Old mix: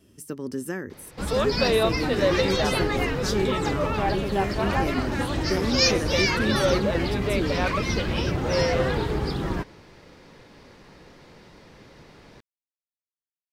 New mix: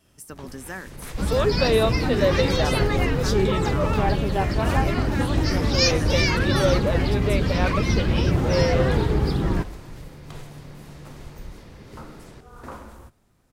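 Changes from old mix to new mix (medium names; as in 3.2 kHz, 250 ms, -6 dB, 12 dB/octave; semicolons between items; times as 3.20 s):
speech: add resonant low shelf 540 Hz -10.5 dB, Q 1.5; first sound: unmuted; master: add bass shelf 290 Hz +7.5 dB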